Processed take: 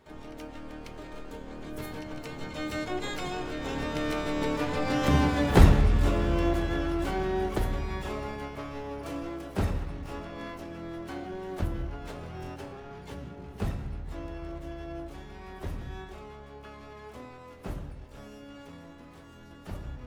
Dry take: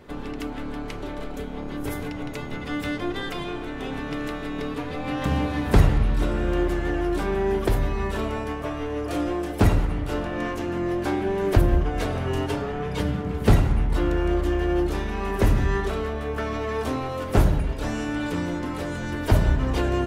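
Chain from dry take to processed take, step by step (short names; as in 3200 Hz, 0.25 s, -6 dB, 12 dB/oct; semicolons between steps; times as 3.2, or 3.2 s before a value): Doppler pass-by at 4.93, 15 m/s, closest 19 m; harmoniser +12 st -6 dB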